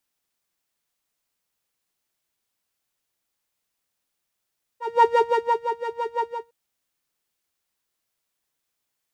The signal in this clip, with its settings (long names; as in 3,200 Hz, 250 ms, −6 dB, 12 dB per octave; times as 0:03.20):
subtractive patch with filter wobble A#5, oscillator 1 saw, oscillator 2 level −5.5 dB, sub −5.5 dB, noise −20 dB, filter bandpass, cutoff 230 Hz, Q 2.4, filter envelope 0.5 octaves, attack 266 ms, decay 0.58 s, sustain −11 dB, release 0.25 s, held 1.46 s, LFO 5.9 Hz, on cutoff 1.9 octaves